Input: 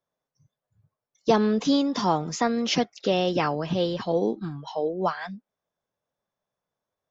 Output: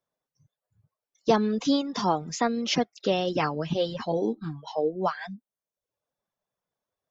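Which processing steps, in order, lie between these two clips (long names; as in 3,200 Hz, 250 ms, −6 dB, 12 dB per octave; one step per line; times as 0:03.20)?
0:03.39–0:04.96: double-tracking delay 13 ms −8.5 dB
reverb reduction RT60 0.65 s
level −1 dB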